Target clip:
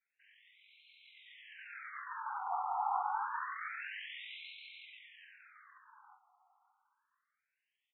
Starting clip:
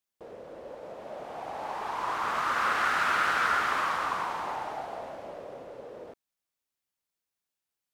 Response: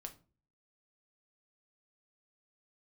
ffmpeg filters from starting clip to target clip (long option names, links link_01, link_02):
-filter_complex "[0:a]acrossover=split=700|5000[link_01][link_02][link_03];[link_01]acompressor=threshold=-49dB:ratio=4[link_04];[link_02]acompressor=threshold=-32dB:ratio=4[link_05];[link_03]acompressor=threshold=-53dB:ratio=4[link_06];[link_04][link_05][link_06]amix=inputs=3:normalize=0,acrossover=split=3700[link_07][link_08];[link_07]alimiter=level_in=4.5dB:limit=-24dB:level=0:latency=1:release=27,volume=-4.5dB[link_09];[link_08]acontrast=53[link_10];[link_09][link_10]amix=inputs=2:normalize=0,afftfilt=real='hypot(re,im)*cos(2*PI*random(0))':imag='hypot(re,im)*sin(2*PI*random(1))':win_size=512:overlap=0.75,flanger=delay=19:depth=7.7:speed=0.27,asetrate=25476,aresample=44100,atempo=1.73107,aecho=1:1:579|1158|1737|2316:0.0944|0.05|0.0265|0.0141,aresample=22050,aresample=44100,afftfilt=real='re*between(b*sr/1024,980*pow(3000/980,0.5+0.5*sin(2*PI*0.27*pts/sr))/1.41,980*pow(3000/980,0.5+0.5*sin(2*PI*0.27*pts/sr))*1.41)':imag='im*between(b*sr/1024,980*pow(3000/980,0.5+0.5*sin(2*PI*0.27*pts/sr))/1.41,980*pow(3000/980,0.5+0.5*sin(2*PI*0.27*pts/sr))*1.41)':win_size=1024:overlap=0.75,volume=13dB"